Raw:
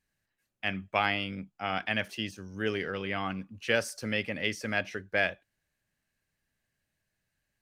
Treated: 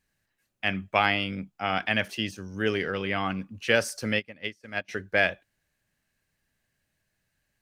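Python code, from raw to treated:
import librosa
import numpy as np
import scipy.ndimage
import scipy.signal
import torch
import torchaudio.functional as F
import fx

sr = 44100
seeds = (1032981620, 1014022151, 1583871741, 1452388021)

y = fx.upward_expand(x, sr, threshold_db=-42.0, expansion=2.5, at=(4.18, 4.88), fade=0.02)
y = y * 10.0 ** (4.5 / 20.0)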